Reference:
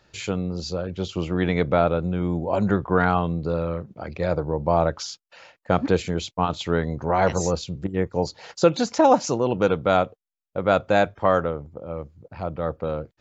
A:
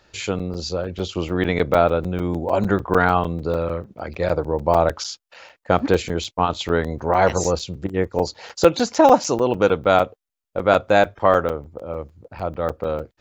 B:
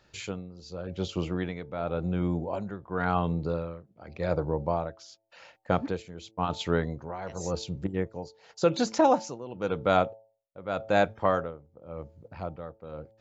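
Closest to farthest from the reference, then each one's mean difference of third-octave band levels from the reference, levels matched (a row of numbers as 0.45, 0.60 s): A, B; 2.0, 3.5 dB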